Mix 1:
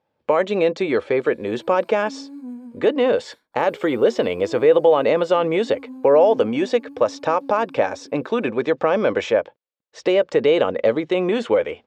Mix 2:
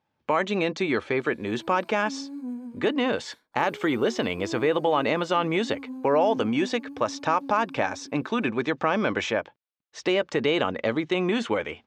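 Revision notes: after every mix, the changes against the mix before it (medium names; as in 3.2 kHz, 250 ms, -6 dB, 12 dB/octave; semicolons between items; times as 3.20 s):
speech: add peaking EQ 510 Hz -11.5 dB 0.79 oct; master: remove band-stop 6.2 kHz, Q 16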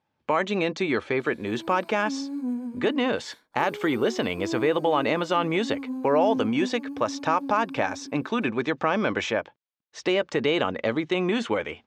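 background +5.0 dB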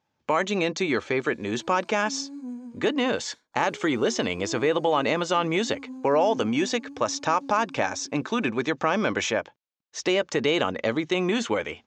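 background -7.0 dB; master: add resonant low-pass 6.8 kHz, resonance Q 3.2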